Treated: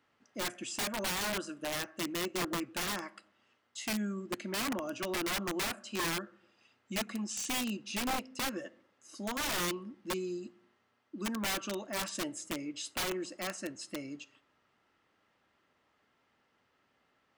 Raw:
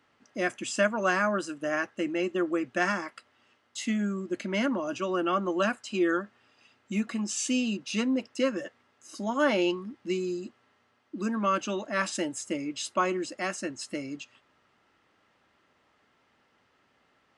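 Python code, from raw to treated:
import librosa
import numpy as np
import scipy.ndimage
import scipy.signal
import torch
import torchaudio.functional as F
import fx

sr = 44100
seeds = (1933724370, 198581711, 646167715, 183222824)

y = fx.rev_freeverb(x, sr, rt60_s=0.7, hf_ratio=0.4, predelay_ms=5, drr_db=20.0)
y = (np.mod(10.0 ** (22.5 / 20.0) * y + 1.0, 2.0) - 1.0) / 10.0 ** (22.5 / 20.0)
y = y * librosa.db_to_amplitude(-6.0)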